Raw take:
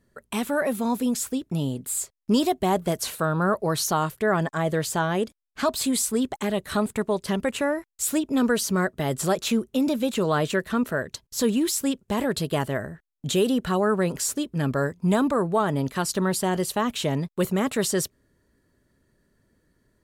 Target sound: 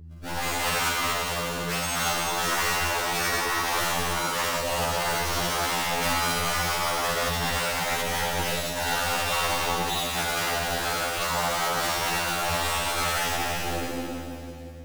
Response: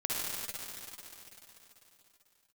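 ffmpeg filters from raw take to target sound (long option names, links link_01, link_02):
-filter_complex "[0:a]highpass=150,equalizer=frequency=230:width_type=q:width=4:gain=6,equalizer=frequency=340:width_type=q:width=4:gain=5,equalizer=frequency=490:width_type=q:width=4:gain=-9,equalizer=frequency=730:width_type=q:width=4:gain=8,equalizer=frequency=1200:width_type=q:width=4:gain=-5,equalizer=frequency=2700:width_type=q:width=4:gain=8,lowpass=frequency=3300:width=0.5412,lowpass=frequency=3300:width=1.3066,dynaudnorm=framelen=150:gausssize=11:maxgain=11dB,acrusher=samples=38:mix=1:aa=0.000001:lfo=1:lforange=60.8:lforate=1.1[link_01];[1:a]atrim=start_sample=2205[link_02];[link_01][link_02]afir=irnorm=-1:irlink=0,acompressor=threshold=-8dB:ratio=16,aeval=exprs='val(0)+0.0112*(sin(2*PI*60*n/s)+sin(2*PI*2*60*n/s)/2+sin(2*PI*3*60*n/s)/3+sin(2*PI*4*60*n/s)/4+sin(2*PI*5*60*n/s)/5)':channel_layout=same,afftfilt=real='re*lt(hypot(re,im),0.708)':imag='im*lt(hypot(re,im),0.708)':win_size=1024:overlap=0.75,equalizer=frequency=1700:width_type=o:width=0.37:gain=-2,asetrate=59535,aresample=44100,bandreject=frequency=50:width_type=h:width=6,bandreject=frequency=100:width_type=h:width=6,bandreject=frequency=150:width_type=h:width=6,bandreject=frequency=200:width_type=h:width=6,bandreject=frequency=250:width_type=h:width=6,bandreject=frequency=300:width_type=h:width=6,bandreject=frequency=350:width_type=h:width=6,afftfilt=real='re*2*eq(mod(b,4),0)':imag='im*2*eq(mod(b,4),0)':win_size=2048:overlap=0.75,volume=-4.5dB"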